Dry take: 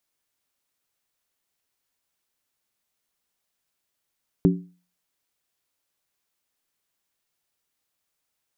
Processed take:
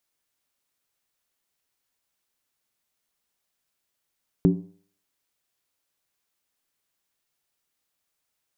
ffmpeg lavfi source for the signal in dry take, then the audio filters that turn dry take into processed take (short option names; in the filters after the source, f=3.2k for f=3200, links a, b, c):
-f lavfi -i "aevalsrc='0.237*pow(10,-3*t/0.38)*sin(2*PI*178*t)+0.168*pow(10,-3*t/0.301)*sin(2*PI*283.7*t)+0.119*pow(10,-3*t/0.26)*sin(2*PI*380.2*t)':d=0.63:s=44100"
-af "bandreject=f=98.36:t=h:w=4,bandreject=f=196.72:t=h:w=4,bandreject=f=295.08:t=h:w=4,bandreject=f=393.44:t=h:w=4,bandreject=f=491.8:t=h:w=4,bandreject=f=590.16:t=h:w=4,bandreject=f=688.52:t=h:w=4,bandreject=f=786.88:t=h:w=4,bandreject=f=885.24:t=h:w=4,bandreject=f=983.6:t=h:w=4,bandreject=f=1.08196k:t=h:w=4"